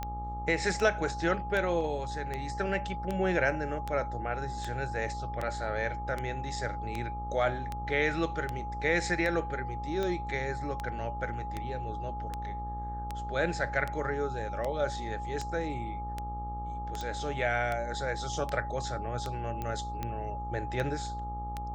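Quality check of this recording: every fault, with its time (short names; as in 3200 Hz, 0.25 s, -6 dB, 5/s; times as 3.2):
buzz 60 Hz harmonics 22 -39 dBFS
tick 78 rpm -20 dBFS
tone 830 Hz -37 dBFS
17.01 pop -23 dBFS
19.62 pop -22 dBFS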